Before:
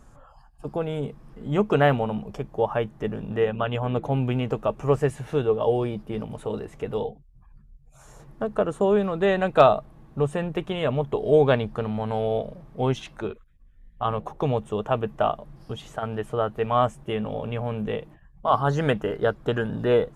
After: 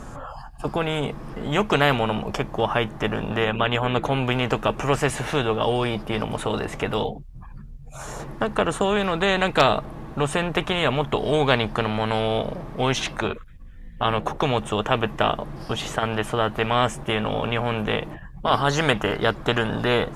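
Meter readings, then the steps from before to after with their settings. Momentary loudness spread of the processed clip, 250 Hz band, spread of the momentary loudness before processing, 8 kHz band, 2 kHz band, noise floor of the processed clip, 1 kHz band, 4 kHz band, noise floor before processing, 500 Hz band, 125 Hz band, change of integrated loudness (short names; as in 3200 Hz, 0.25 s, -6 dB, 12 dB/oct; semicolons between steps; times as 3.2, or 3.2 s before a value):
10 LU, +2.0 dB, 12 LU, n/a, +8.5 dB, -40 dBFS, +3.0 dB, +12.0 dB, -53 dBFS, -0.5 dB, +1.0 dB, +2.0 dB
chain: high shelf 6600 Hz -6 dB; spectral compressor 2:1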